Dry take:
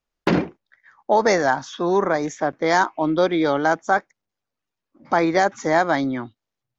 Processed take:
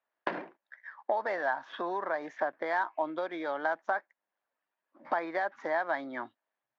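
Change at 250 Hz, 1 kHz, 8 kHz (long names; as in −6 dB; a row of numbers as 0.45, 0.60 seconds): −19.5 dB, −11.5 dB, can't be measured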